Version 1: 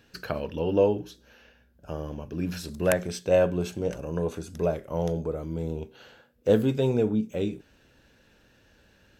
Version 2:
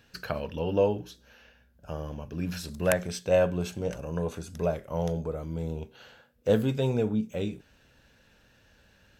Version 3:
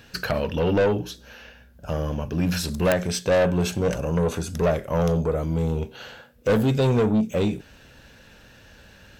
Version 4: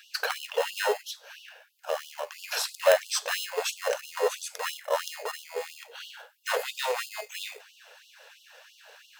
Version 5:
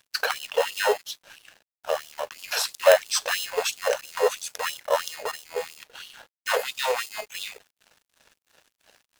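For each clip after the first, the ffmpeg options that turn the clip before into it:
ffmpeg -i in.wav -af "equalizer=frequency=340:width=1.6:gain=-6" out.wav
ffmpeg -i in.wav -filter_complex "[0:a]asplit=2[link_01][link_02];[link_02]alimiter=limit=-16dB:level=0:latency=1:release=393,volume=0.5dB[link_03];[link_01][link_03]amix=inputs=2:normalize=0,asoftclip=type=tanh:threshold=-20.5dB,volume=5dB" out.wav
ffmpeg -i in.wav -filter_complex "[0:a]asplit=2[link_01][link_02];[link_02]acrusher=samples=19:mix=1:aa=0.000001,volume=-7dB[link_03];[link_01][link_03]amix=inputs=2:normalize=0,afftfilt=real='re*gte(b*sr/1024,410*pow(2800/410,0.5+0.5*sin(2*PI*3*pts/sr)))':imag='im*gte(b*sr/1024,410*pow(2800/410,0.5+0.5*sin(2*PI*3*pts/sr)))':win_size=1024:overlap=0.75" out.wav
ffmpeg -i in.wav -af "aeval=exprs='sgn(val(0))*max(abs(val(0))-0.00355,0)':channel_layout=same,volume=4.5dB" out.wav

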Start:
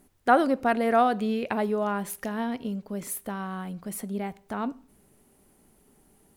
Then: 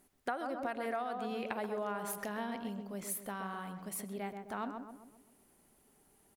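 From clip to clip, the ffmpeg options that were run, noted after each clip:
ffmpeg -i in.wav -filter_complex "[0:a]lowshelf=frequency=410:gain=-8.5,asplit=2[link_01][link_02];[link_02]adelay=130,lowpass=frequency=1400:poles=1,volume=-6dB,asplit=2[link_03][link_04];[link_04]adelay=130,lowpass=frequency=1400:poles=1,volume=0.5,asplit=2[link_05][link_06];[link_06]adelay=130,lowpass=frequency=1400:poles=1,volume=0.5,asplit=2[link_07][link_08];[link_08]adelay=130,lowpass=frequency=1400:poles=1,volume=0.5,asplit=2[link_09][link_10];[link_10]adelay=130,lowpass=frequency=1400:poles=1,volume=0.5,asplit=2[link_11][link_12];[link_12]adelay=130,lowpass=frequency=1400:poles=1,volume=0.5[link_13];[link_03][link_05][link_07][link_09][link_11][link_13]amix=inputs=6:normalize=0[link_14];[link_01][link_14]amix=inputs=2:normalize=0,acompressor=threshold=-29dB:ratio=16,volume=-4dB" out.wav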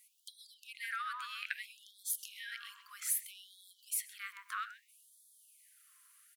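ffmpeg -i in.wav -filter_complex "[0:a]asplit=2[link_01][link_02];[link_02]asoftclip=type=tanh:threshold=-27dB,volume=-8dB[link_03];[link_01][link_03]amix=inputs=2:normalize=0,afftfilt=real='re*gte(b*sr/1024,970*pow(3300/970,0.5+0.5*sin(2*PI*0.62*pts/sr)))':imag='im*gte(b*sr/1024,970*pow(3300/970,0.5+0.5*sin(2*PI*0.62*pts/sr)))':win_size=1024:overlap=0.75,volume=3.5dB" out.wav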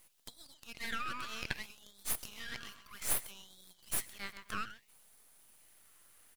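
ffmpeg -i in.wav -af "aeval=exprs='max(val(0),0)':channel_layout=same,volume=5dB" out.wav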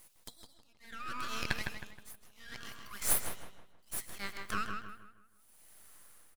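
ffmpeg -i in.wav -filter_complex "[0:a]equalizer=frequency=2800:width_type=o:width=0.99:gain=-3.5,tremolo=f=0.68:d=0.95,asplit=2[link_01][link_02];[link_02]adelay=158,lowpass=frequency=2900:poles=1,volume=-4.5dB,asplit=2[link_03][link_04];[link_04]adelay=158,lowpass=frequency=2900:poles=1,volume=0.4,asplit=2[link_05][link_06];[link_06]adelay=158,lowpass=frequency=2900:poles=1,volume=0.4,asplit=2[link_07][link_08];[link_08]adelay=158,lowpass=frequency=2900:poles=1,volume=0.4,asplit=2[link_09][link_10];[link_10]adelay=158,lowpass=frequency=2900:poles=1,volume=0.4[link_11];[link_03][link_05][link_07][link_09][link_11]amix=inputs=5:normalize=0[link_12];[link_01][link_12]amix=inputs=2:normalize=0,volume=5dB" out.wav

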